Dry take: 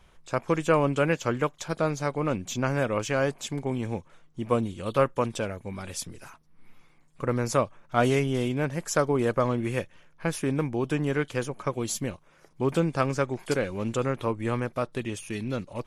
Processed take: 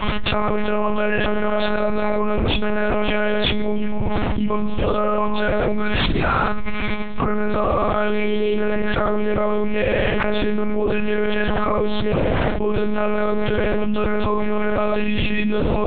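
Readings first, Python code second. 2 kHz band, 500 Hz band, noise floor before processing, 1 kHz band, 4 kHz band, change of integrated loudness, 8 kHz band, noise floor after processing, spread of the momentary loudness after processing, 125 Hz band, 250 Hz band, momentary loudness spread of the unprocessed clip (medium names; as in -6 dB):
+9.5 dB, +7.0 dB, -58 dBFS, +8.0 dB, +12.0 dB, +7.0 dB, under -40 dB, -21 dBFS, 3 LU, +3.5 dB, +7.5 dB, 10 LU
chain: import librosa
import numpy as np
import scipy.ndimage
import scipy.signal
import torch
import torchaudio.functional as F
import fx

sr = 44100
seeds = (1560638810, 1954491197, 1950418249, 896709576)

y = fx.low_shelf(x, sr, hz=76.0, db=-6.5)
y = fx.chorus_voices(y, sr, voices=6, hz=0.37, base_ms=26, depth_ms=1.1, mix_pct=60)
y = fx.echo_feedback(y, sr, ms=77, feedback_pct=36, wet_db=-16.5)
y = fx.rev_schroeder(y, sr, rt60_s=0.66, comb_ms=31, drr_db=8.0)
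y = fx.lpc_monotone(y, sr, seeds[0], pitch_hz=210.0, order=8)
y = fx.env_flatten(y, sr, amount_pct=100)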